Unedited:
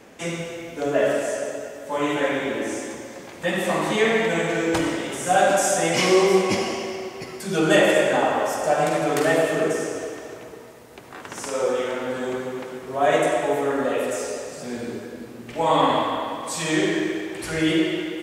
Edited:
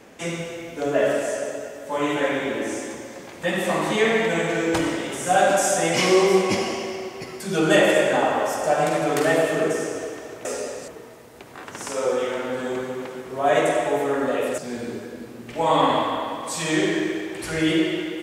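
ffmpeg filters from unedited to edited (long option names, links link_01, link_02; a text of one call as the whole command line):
ffmpeg -i in.wav -filter_complex "[0:a]asplit=4[link_01][link_02][link_03][link_04];[link_01]atrim=end=10.452[link_05];[link_02]atrim=start=14.148:end=14.582[link_06];[link_03]atrim=start=10.448:end=14.152[link_07];[link_04]atrim=start=14.578[link_08];[link_05][link_06]acrossfade=duration=0.004:curve1=hsin:curve2=hsin[link_09];[link_09][link_07]acrossfade=duration=0.004:curve1=hsin:curve2=hsin[link_10];[link_10][link_08]acrossfade=duration=0.004:curve1=hsin:curve2=hsin" out.wav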